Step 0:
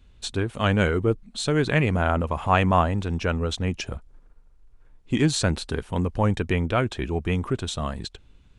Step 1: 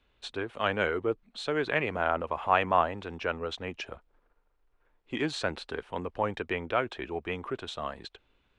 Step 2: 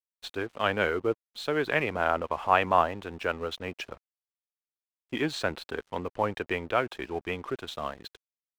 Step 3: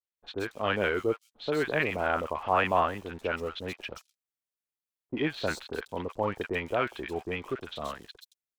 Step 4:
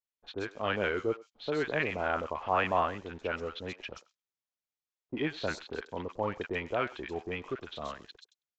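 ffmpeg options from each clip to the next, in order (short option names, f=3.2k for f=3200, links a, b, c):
-filter_complex "[0:a]acrossover=split=340 4000:gain=0.158 1 0.141[a][b][c];[a][b][c]amix=inputs=3:normalize=0,volume=-3dB"
-af "aeval=exprs='sgn(val(0))*max(abs(val(0))-0.00282,0)':c=same,volume=2dB"
-filter_complex "[0:a]acrossover=split=1000|4600[a][b][c];[b]adelay=40[d];[c]adelay=170[e];[a][d][e]amix=inputs=3:normalize=0"
-filter_complex "[0:a]aresample=16000,aresample=44100,asplit=2[a][b];[b]adelay=100,highpass=300,lowpass=3.4k,asoftclip=type=hard:threshold=-18.5dB,volume=-20dB[c];[a][c]amix=inputs=2:normalize=0,volume=-3dB"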